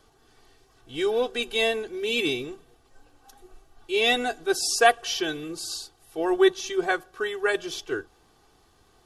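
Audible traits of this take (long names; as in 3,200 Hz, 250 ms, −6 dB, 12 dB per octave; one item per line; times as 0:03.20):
background noise floor −61 dBFS
spectral slope −2.0 dB per octave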